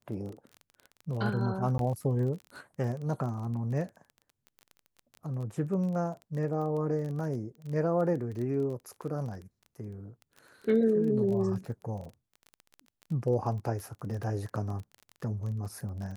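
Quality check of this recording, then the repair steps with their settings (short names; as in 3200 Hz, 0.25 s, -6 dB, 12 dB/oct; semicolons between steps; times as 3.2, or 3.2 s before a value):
crackle 21/s -37 dBFS
1.78–1.79 gap 12 ms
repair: de-click; interpolate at 1.78, 12 ms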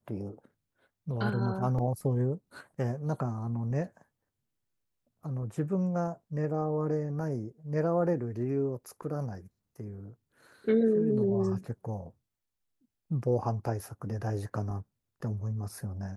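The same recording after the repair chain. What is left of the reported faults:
none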